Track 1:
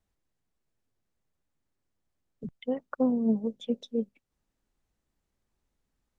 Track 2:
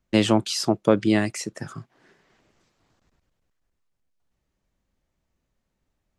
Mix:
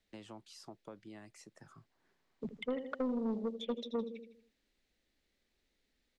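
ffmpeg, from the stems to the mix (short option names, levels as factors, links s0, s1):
-filter_complex "[0:a]equalizer=f=125:t=o:w=1:g=-7,equalizer=f=250:t=o:w=1:g=5,equalizer=f=500:t=o:w=1:g=7,equalizer=f=1000:t=o:w=1:g=-12,equalizer=f=2000:t=o:w=1:g=11,equalizer=f=4000:t=o:w=1:g=12,volume=0.668,asplit=3[s0][s1][s2];[s1]volume=0.224[s3];[1:a]acompressor=threshold=0.0251:ratio=2.5,volume=0.282[s4];[s2]apad=whole_len=272863[s5];[s4][s5]sidechaingate=range=0.316:threshold=0.00251:ratio=16:detection=peak[s6];[s3]aecho=0:1:79|158|237|316|395|474:1|0.45|0.202|0.0911|0.041|0.0185[s7];[s0][s6][s7]amix=inputs=3:normalize=0,acrossover=split=270|2100[s8][s9][s10];[s8]acompressor=threshold=0.01:ratio=4[s11];[s9]acompressor=threshold=0.02:ratio=4[s12];[s10]acompressor=threshold=0.00316:ratio=4[s13];[s11][s12][s13]amix=inputs=3:normalize=0,asoftclip=type=tanh:threshold=0.0355,equalizer=f=960:t=o:w=1:g=5.5"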